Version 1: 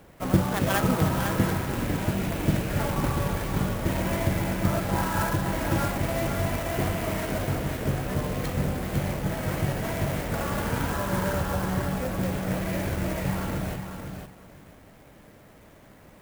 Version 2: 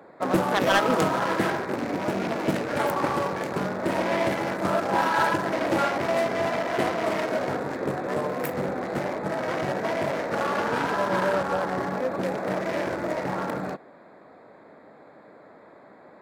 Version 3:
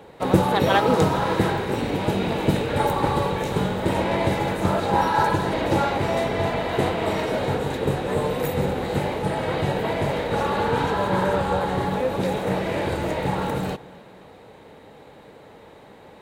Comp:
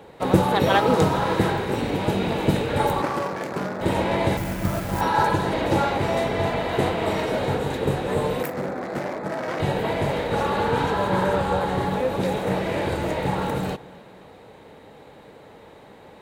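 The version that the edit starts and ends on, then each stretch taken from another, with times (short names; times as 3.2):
3
3.02–3.81 from 2
4.37–5.01 from 1
8.43–9.6 from 2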